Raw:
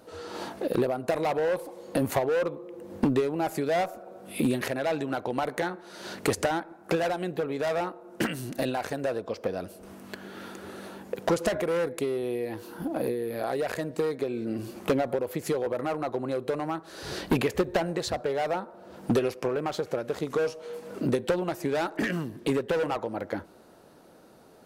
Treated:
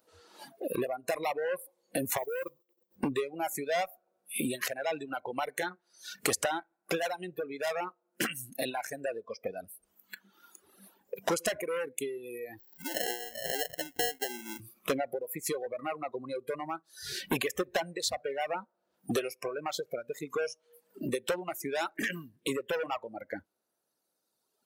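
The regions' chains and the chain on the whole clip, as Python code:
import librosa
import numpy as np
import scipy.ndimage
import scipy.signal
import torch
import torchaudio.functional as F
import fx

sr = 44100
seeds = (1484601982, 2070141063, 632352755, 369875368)

y = fx.chain(x, sr, fx.level_steps(step_db=14),
    fx.mod_noise(seeds[0], snr_db=23), at=(2.17, 2.96))
y = fx.chain(y, sr, fx.highpass(hz=230.0, slope=12),
    fx.sample_hold(seeds[1], rate_hz=1200.0, jitter_pct=0), at=(12.59, 14.6))
y = fx.noise_reduce_blind(y, sr, reduce_db=15)
y = fx.tilt_eq(y, sr, slope=2.5)
y = fx.dereverb_blind(y, sr, rt60_s=2.0)
y = y * 10.0 ** (-2.5 / 20.0)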